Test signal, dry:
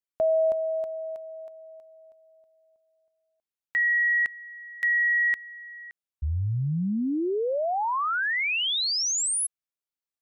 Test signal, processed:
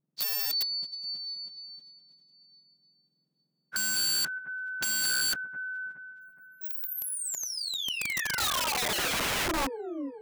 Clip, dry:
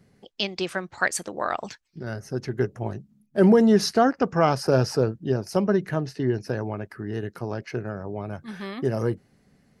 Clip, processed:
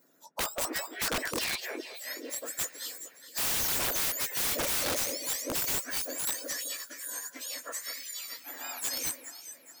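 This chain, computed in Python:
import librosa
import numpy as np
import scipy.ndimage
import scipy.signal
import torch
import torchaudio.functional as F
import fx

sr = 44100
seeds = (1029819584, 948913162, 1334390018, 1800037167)

y = fx.octave_mirror(x, sr, pivot_hz=1700.0)
y = fx.echo_alternate(y, sr, ms=209, hz=2400.0, feedback_pct=66, wet_db=-9)
y = (np.mod(10.0 ** (24.5 / 20.0) * y + 1.0, 2.0) - 1.0) / 10.0 ** (24.5 / 20.0)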